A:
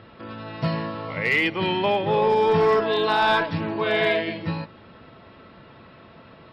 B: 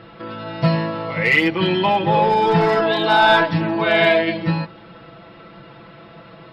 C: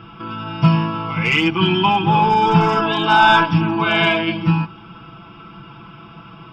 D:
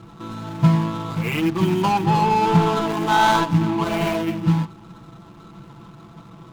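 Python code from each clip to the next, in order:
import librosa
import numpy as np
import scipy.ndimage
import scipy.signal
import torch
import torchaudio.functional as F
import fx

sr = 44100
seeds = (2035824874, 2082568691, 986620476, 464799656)

y1 = x + 0.87 * np.pad(x, (int(6.0 * sr / 1000.0), 0))[:len(x)]
y1 = F.gain(torch.from_numpy(y1), 3.0).numpy()
y2 = fx.fixed_phaser(y1, sr, hz=2800.0, stages=8)
y2 = F.gain(torch.from_numpy(y2), 5.5).numpy()
y3 = scipy.ndimage.median_filter(y2, 25, mode='constant')
y3 = F.gain(torch.from_numpy(y3), -1.5).numpy()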